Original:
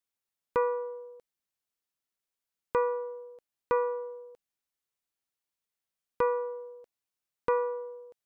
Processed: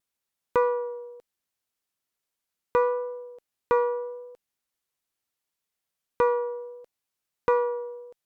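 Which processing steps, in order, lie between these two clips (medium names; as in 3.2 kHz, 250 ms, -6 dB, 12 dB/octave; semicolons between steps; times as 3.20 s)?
Chebyshev shaper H 6 -39 dB, 8 -38 dB, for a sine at -16.5 dBFS; vibrato 0.74 Hz 17 cents; trim +4.5 dB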